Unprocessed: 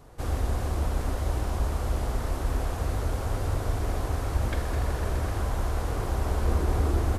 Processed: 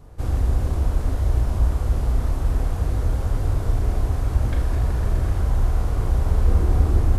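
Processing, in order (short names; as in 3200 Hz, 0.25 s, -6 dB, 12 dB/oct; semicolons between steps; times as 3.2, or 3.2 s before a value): low shelf 230 Hz +11 dB; flutter echo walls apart 5.8 m, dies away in 0.26 s; gain -2.5 dB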